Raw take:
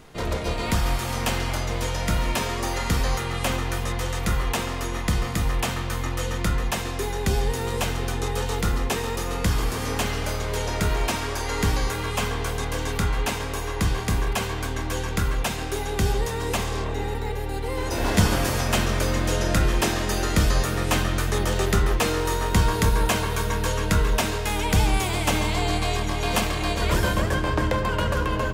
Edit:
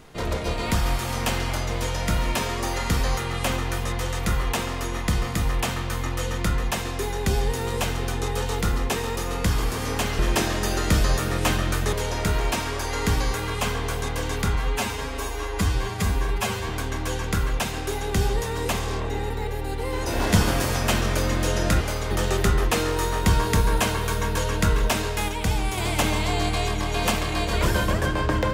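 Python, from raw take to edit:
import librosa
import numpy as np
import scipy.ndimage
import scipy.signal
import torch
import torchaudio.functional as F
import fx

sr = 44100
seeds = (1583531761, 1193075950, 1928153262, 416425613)

y = fx.edit(x, sr, fx.swap(start_s=10.19, length_s=0.3, other_s=19.65, other_length_s=1.74),
    fx.stretch_span(start_s=13.11, length_s=1.43, factor=1.5),
    fx.clip_gain(start_s=24.57, length_s=0.49, db=-4.0), tone=tone)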